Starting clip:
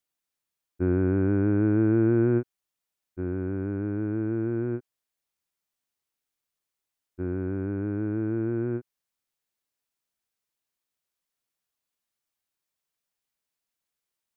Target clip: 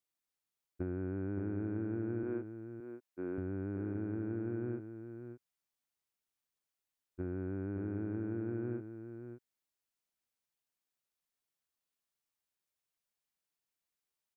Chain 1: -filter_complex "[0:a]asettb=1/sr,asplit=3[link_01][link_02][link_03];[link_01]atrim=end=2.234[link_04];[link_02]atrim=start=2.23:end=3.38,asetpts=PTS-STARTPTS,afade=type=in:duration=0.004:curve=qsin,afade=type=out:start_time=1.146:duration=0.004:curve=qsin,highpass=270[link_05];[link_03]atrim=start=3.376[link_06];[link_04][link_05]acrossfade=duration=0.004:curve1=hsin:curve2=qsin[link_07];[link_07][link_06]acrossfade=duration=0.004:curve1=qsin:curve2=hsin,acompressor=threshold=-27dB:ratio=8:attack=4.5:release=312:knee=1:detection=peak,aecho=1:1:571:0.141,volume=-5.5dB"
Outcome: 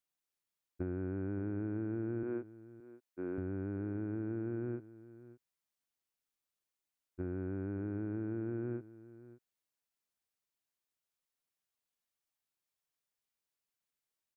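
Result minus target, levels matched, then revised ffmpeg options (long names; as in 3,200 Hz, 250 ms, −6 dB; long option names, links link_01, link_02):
echo-to-direct −8 dB
-filter_complex "[0:a]asettb=1/sr,asplit=3[link_01][link_02][link_03];[link_01]atrim=end=2.234[link_04];[link_02]atrim=start=2.23:end=3.38,asetpts=PTS-STARTPTS,afade=type=in:duration=0.004:curve=qsin,afade=type=out:start_time=1.146:duration=0.004:curve=qsin,highpass=270[link_05];[link_03]atrim=start=3.376[link_06];[link_04][link_05]acrossfade=duration=0.004:curve1=hsin:curve2=qsin[link_07];[link_07][link_06]acrossfade=duration=0.004:curve1=qsin:curve2=hsin,acompressor=threshold=-27dB:ratio=8:attack=4.5:release=312:knee=1:detection=peak,aecho=1:1:571:0.355,volume=-5.5dB"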